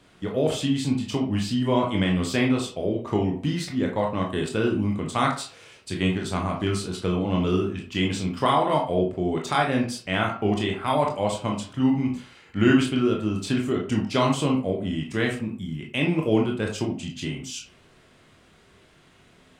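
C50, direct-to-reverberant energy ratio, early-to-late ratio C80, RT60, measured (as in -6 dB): 7.0 dB, -0.5 dB, 12.0 dB, 0.45 s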